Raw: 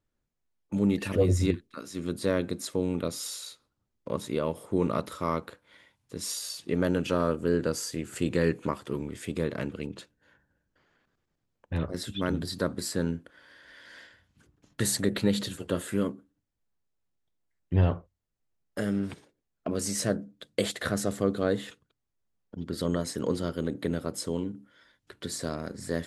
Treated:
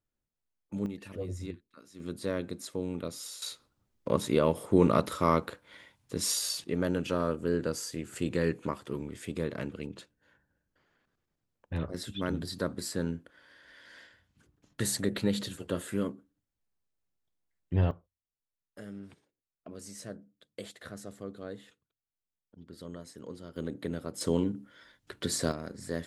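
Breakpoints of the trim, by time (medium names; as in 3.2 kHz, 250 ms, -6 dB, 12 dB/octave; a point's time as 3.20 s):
-7 dB
from 0.86 s -14 dB
from 2.00 s -6 dB
from 3.42 s +4 dB
from 6.64 s -3.5 dB
from 17.91 s -15 dB
from 23.56 s -5.5 dB
from 24.21 s +3.5 dB
from 25.52 s -4 dB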